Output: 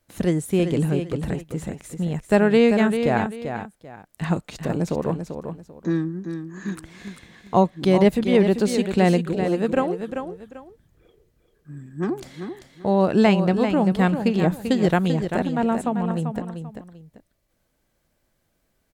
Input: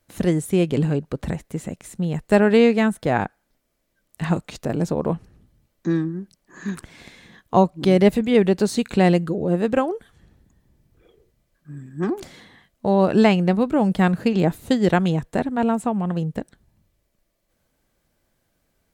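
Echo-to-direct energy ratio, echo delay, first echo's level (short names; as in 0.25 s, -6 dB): -7.5 dB, 0.391 s, -8.0 dB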